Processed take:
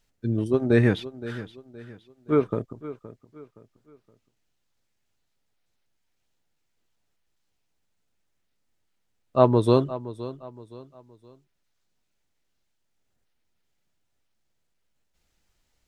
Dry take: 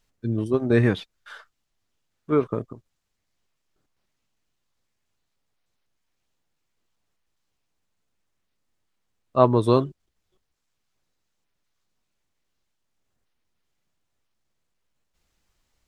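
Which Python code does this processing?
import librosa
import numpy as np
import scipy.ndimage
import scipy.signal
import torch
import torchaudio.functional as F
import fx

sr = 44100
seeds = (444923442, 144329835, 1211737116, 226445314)

p1 = fx.peak_eq(x, sr, hz=1100.0, db=-6.0, octaves=0.2)
y = p1 + fx.echo_feedback(p1, sr, ms=519, feedback_pct=36, wet_db=-15.5, dry=0)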